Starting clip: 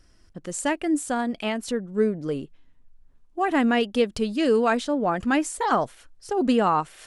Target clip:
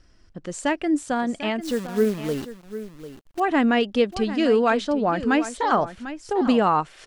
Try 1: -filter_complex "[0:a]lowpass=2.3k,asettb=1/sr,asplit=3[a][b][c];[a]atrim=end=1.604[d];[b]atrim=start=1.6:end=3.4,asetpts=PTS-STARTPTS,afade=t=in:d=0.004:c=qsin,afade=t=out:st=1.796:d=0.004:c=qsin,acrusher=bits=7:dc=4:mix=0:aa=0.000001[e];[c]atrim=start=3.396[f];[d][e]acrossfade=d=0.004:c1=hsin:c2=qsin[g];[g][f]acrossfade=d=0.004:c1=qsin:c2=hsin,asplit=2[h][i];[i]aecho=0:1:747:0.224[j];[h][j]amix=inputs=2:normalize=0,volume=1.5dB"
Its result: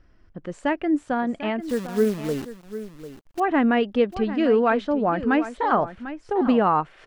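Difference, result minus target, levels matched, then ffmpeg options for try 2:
8000 Hz band -9.0 dB
-filter_complex "[0:a]lowpass=6.1k,asettb=1/sr,asplit=3[a][b][c];[a]atrim=end=1.604[d];[b]atrim=start=1.6:end=3.4,asetpts=PTS-STARTPTS,afade=t=in:d=0.004:c=qsin,afade=t=out:st=1.796:d=0.004:c=qsin,acrusher=bits=7:dc=4:mix=0:aa=0.000001[e];[c]atrim=start=3.396[f];[d][e]acrossfade=d=0.004:c1=hsin:c2=qsin[g];[g][f]acrossfade=d=0.004:c1=qsin:c2=hsin,asplit=2[h][i];[i]aecho=0:1:747:0.224[j];[h][j]amix=inputs=2:normalize=0,volume=1.5dB"

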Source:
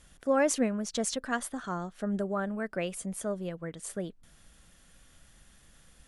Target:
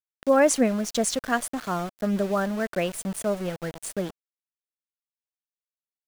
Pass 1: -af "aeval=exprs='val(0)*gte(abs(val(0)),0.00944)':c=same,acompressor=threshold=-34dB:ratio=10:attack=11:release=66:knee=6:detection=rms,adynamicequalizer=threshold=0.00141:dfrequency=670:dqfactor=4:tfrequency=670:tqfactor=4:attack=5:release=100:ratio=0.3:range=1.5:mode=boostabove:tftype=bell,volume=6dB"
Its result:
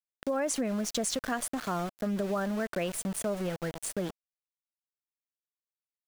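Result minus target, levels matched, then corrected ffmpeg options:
compressor: peak gain reduction +13 dB
-af "aeval=exprs='val(0)*gte(abs(val(0)),0.00944)':c=same,adynamicequalizer=threshold=0.00141:dfrequency=670:dqfactor=4:tfrequency=670:tqfactor=4:attack=5:release=100:ratio=0.3:range=1.5:mode=boostabove:tftype=bell,volume=6dB"

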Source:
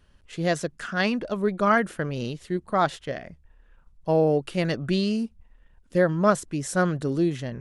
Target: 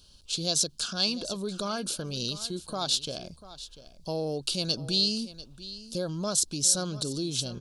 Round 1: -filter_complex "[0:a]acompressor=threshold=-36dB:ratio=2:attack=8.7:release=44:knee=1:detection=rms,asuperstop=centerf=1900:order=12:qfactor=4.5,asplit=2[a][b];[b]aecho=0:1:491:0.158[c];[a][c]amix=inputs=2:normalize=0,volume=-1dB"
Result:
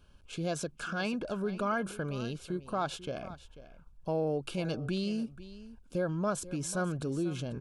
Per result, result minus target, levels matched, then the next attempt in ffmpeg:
4000 Hz band -11.0 dB; echo 0.202 s early
-filter_complex "[0:a]acompressor=threshold=-36dB:ratio=2:attack=8.7:release=44:knee=1:detection=rms,asuperstop=centerf=1900:order=12:qfactor=4.5,highshelf=f=2.9k:t=q:w=3:g=13.5,asplit=2[a][b];[b]aecho=0:1:491:0.158[c];[a][c]amix=inputs=2:normalize=0,volume=-1dB"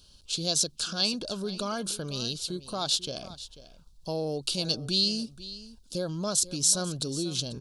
echo 0.202 s early
-filter_complex "[0:a]acompressor=threshold=-36dB:ratio=2:attack=8.7:release=44:knee=1:detection=rms,asuperstop=centerf=1900:order=12:qfactor=4.5,highshelf=f=2.9k:t=q:w=3:g=13.5,asplit=2[a][b];[b]aecho=0:1:693:0.158[c];[a][c]amix=inputs=2:normalize=0,volume=-1dB"

